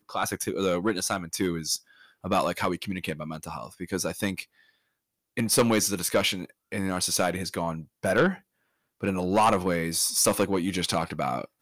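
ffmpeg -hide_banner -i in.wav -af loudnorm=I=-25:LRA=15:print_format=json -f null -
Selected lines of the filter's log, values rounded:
"input_i" : "-26.4",
"input_tp" : "-10.8",
"input_lra" : "4.5",
"input_thresh" : "-36.8",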